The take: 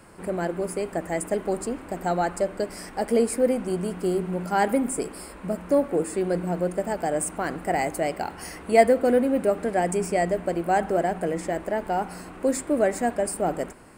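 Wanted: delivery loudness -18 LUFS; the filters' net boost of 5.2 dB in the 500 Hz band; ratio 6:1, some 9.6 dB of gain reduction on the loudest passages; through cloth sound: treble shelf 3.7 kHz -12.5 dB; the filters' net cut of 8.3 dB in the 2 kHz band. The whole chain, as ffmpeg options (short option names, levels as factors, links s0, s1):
-af "equalizer=f=500:t=o:g=7,equalizer=f=2000:t=o:g=-8,acompressor=threshold=0.112:ratio=6,highshelf=f=3700:g=-12.5,volume=2.51"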